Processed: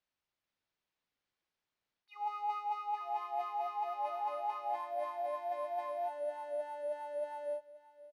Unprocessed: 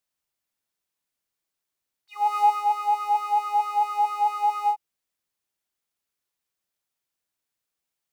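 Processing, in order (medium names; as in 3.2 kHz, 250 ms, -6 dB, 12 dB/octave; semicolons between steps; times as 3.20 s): careless resampling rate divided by 3×, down filtered, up hold; ever faster or slower copies 438 ms, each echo -3 st, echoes 2, each echo -6 dB; reverse; compression 12:1, threshold -33 dBFS, peak gain reduction 18.5 dB; reverse; low-pass 4.5 kHz 12 dB/octave; delay 529 ms -17.5 dB; trim -1 dB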